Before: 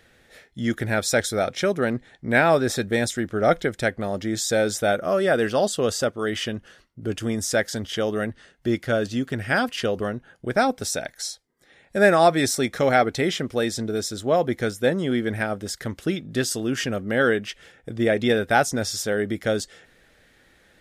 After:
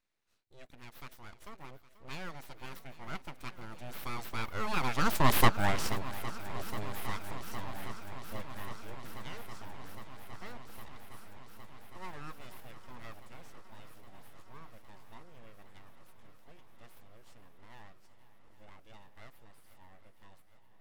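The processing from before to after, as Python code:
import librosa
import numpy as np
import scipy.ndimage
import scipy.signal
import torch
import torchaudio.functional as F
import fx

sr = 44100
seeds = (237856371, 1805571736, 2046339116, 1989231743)

y = fx.doppler_pass(x, sr, speed_mps=35, closest_m=6.4, pass_at_s=5.42)
y = np.abs(y)
y = fx.echo_swing(y, sr, ms=811, ratio=1.5, feedback_pct=77, wet_db=-16)
y = F.gain(torch.from_numpy(y), 3.5).numpy()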